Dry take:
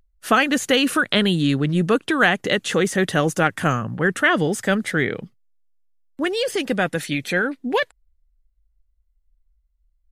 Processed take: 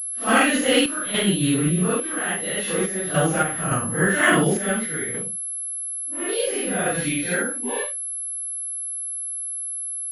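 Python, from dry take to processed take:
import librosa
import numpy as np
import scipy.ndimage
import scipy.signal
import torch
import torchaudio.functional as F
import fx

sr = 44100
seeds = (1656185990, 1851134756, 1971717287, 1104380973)

y = fx.phase_scramble(x, sr, seeds[0], window_ms=200)
y = fx.tremolo_random(y, sr, seeds[1], hz=3.5, depth_pct=75)
y = fx.pwm(y, sr, carrier_hz=11000.0)
y = F.gain(torch.from_numpy(y), 1.5).numpy()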